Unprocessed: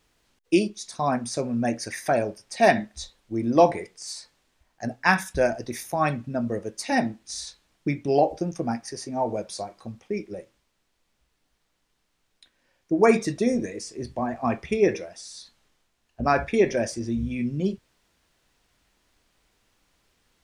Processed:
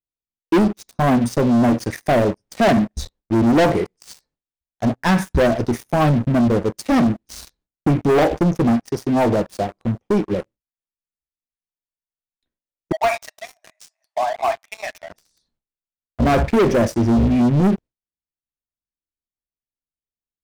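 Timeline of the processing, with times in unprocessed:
12.92–15.10 s: brick-wall FIR high-pass 590 Hz
whole clip: gate with hold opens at -47 dBFS; tilt shelf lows +8.5 dB, about 780 Hz; waveshaping leveller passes 5; trim -8 dB

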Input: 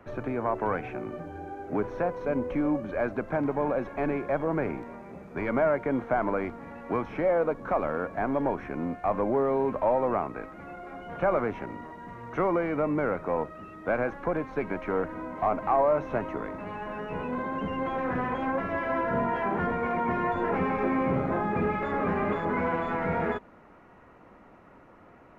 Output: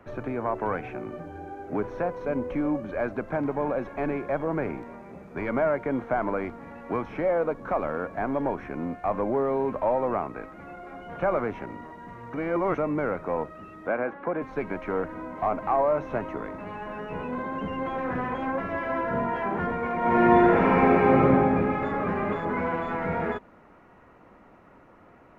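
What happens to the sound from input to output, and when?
12.34–12.78 s: reverse
13.87–14.42 s: three-band isolator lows -22 dB, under 150 Hz, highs -21 dB, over 3.3 kHz
19.97–21.23 s: reverb throw, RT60 2.3 s, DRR -7.5 dB

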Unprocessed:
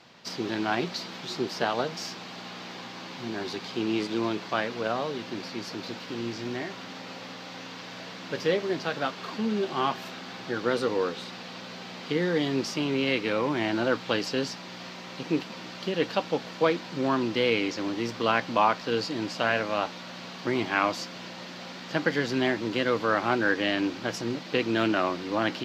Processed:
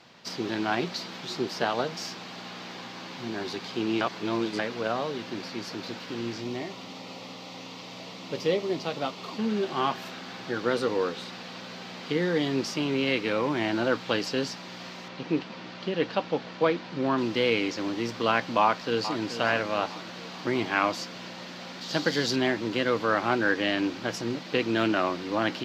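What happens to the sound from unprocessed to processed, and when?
4.01–4.59 s: reverse
6.40–9.39 s: peaking EQ 1.6 kHz -14 dB 0.35 oct
15.08–17.18 s: distance through air 110 m
18.61–19.23 s: echo throw 430 ms, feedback 55%, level -11.5 dB
21.81–22.36 s: resonant high shelf 3.1 kHz +7.5 dB, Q 1.5

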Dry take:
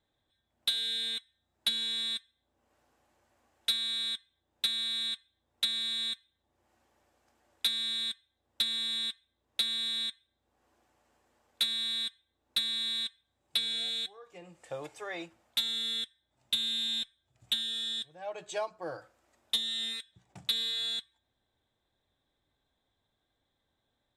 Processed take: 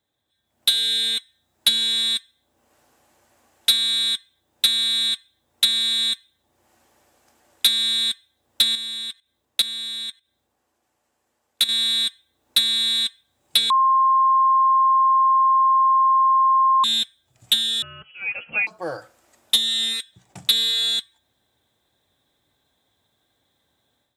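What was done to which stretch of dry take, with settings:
8.75–11.69 s: level held to a coarse grid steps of 14 dB
13.70–16.84 s: bleep 1.06 kHz -23 dBFS
17.82–18.67 s: frequency inversion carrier 3.1 kHz
whole clip: high-pass 78 Hz; treble shelf 5.7 kHz +9 dB; level rider gain up to 9.5 dB

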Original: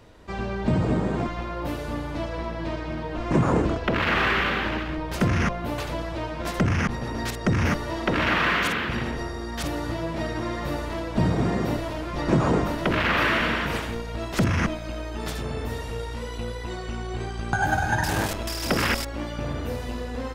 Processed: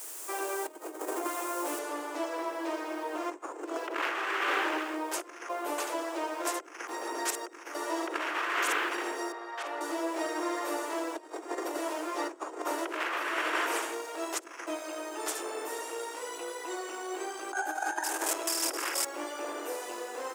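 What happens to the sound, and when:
1.79 s: noise floor step -46 dB -64 dB
9.32–9.81 s: three-band isolator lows -22 dB, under 440 Hz, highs -23 dB, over 3.6 kHz
whole clip: graphic EQ 500/2000/4000/8000 Hz -6/-4/-9/+8 dB; compressor with a negative ratio -28 dBFS, ratio -0.5; steep high-pass 320 Hz 72 dB/octave

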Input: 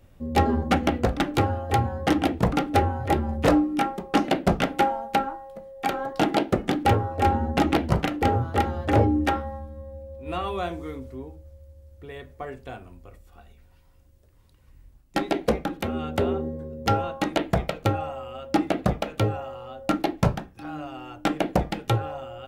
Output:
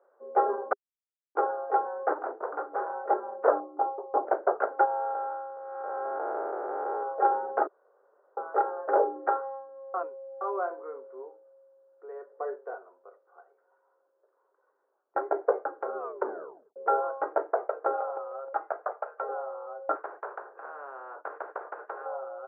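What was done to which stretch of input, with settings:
0.73–1.35 s: mute
2.14–2.95 s: hard clipper -25 dBFS
3.60–4.27 s: high-order bell 2.2 kHz -16 dB
4.85–7.03 s: spectral blur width 372 ms
7.67–8.37 s: room tone
9.94–10.41 s: reverse
12.31–12.75 s: small resonant body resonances 310/460/1900 Hz, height 8 dB
15.97 s: tape stop 0.79 s
17.44–17.86 s: echo throw 310 ms, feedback 20%, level -9.5 dB
18.53–19.29 s: band-pass 790–6100 Hz
19.95–22.06 s: spectrum-flattening compressor 4:1
whole clip: Chebyshev band-pass 400–1500 Hz, order 4

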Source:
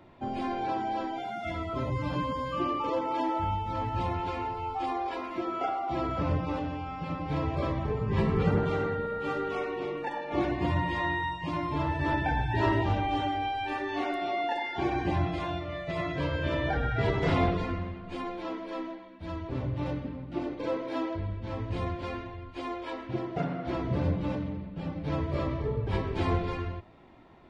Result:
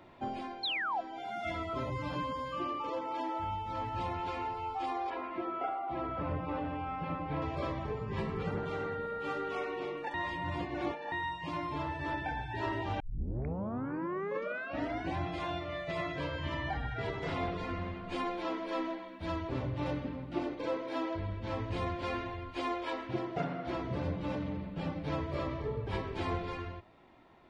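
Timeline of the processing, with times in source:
0.63–1.01 s: painted sound fall 650–4400 Hz -20 dBFS
5.10–7.42 s: low-pass 2.4 kHz
10.14–11.12 s: reverse
13.00 s: tape start 2.19 s
16.38–16.94 s: comb 1 ms, depth 69%
whole clip: bass shelf 360 Hz -6 dB; gain riding 0.5 s; trim -4.5 dB

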